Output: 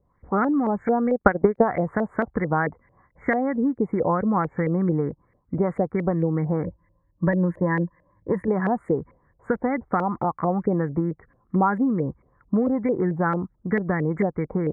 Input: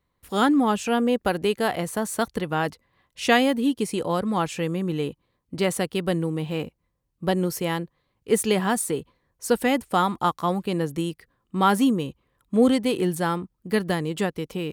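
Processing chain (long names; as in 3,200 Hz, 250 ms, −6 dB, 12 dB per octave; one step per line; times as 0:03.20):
0:06.64–0:08.48: EQ curve with evenly spaced ripples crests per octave 1.2, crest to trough 13 dB
downward compressor 6 to 1, threshold −26 dBFS, peak gain reduction 12.5 dB
linear-phase brick-wall band-stop 2,300–6,600 Hz
bass and treble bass +5 dB, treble −11 dB
0:01.07–0:01.64: transient designer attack +9 dB, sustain −10 dB
auto-filter low-pass saw up 4.5 Hz 520–2,300 Hz
level +4 dB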